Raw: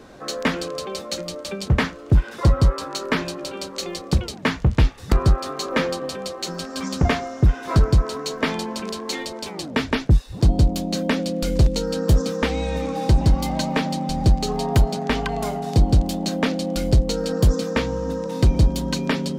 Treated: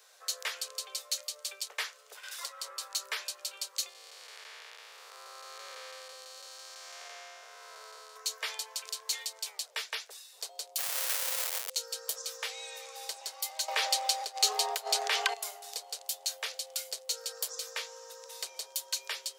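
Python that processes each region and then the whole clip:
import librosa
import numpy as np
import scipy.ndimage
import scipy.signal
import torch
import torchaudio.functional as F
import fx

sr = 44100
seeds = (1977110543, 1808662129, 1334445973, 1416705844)

y = fx.chain(x, sr, fx.highpass(hz=1000.0, slope=6),
    fx.band_squash(depth_pct=70), at=(2.23, 2.64))
y = fx.chain(y, sr, fx.spec_blur(span_ms=429.0),
    fx.high_shelf(hz=4800.0, db=-9.0), at=(3.89, 8.16))
y = fx.chain(y, sr, fx.cvsd(bps=16000),
    fx.schmitt(flips_db=-38.0), at=(10.78, 11.7))
y = fx.chain(y, sr, fx.high_shelf(hz=5200.0, db=-8.5),
    fx.env_flatten(amount_pct=100), at=(13.68, 15.34))
y = scipy.signal.sosfilt(scipy.signal.butter(12, 420.0, 'highpass', fs=sr, output='sos'), y)
y = np.diff(y, prepend=0.0)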